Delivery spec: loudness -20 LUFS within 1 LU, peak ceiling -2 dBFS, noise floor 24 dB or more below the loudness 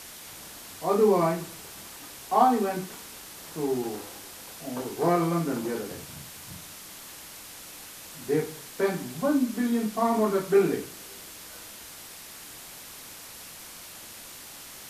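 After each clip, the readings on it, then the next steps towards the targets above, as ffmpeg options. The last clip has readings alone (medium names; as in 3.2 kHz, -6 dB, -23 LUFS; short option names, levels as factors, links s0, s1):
noise floor -45 dBFS; noise floor target -51 dBFS; loudness -26.5 LUFS; peak level -7.5 dBFS; loudness target -20.0 LUFS
-> -af "afftdn=nr=6:nf=-45"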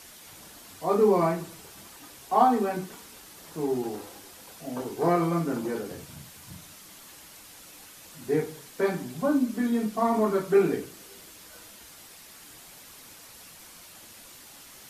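noise floor -49 dBFS; noise floor target -51 dBFS
-> -af "afftdn=nr=6:nf=-49"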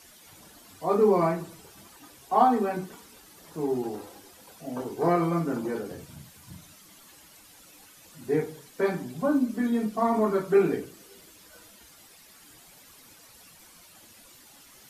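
noise floor -53 dBFS; loudness -26.5 LUFS; peak level -7.5 dBFS; loudness target -20.0 LUFS
-> -af "volume=2.11,alimiter=limit=0.794:level=0:latency=1"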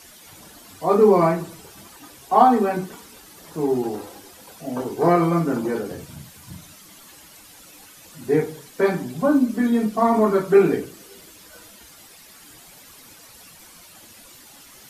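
loudness -20.0 LUFS; peak level -2.0 dBFS; noise floor -47 dBFS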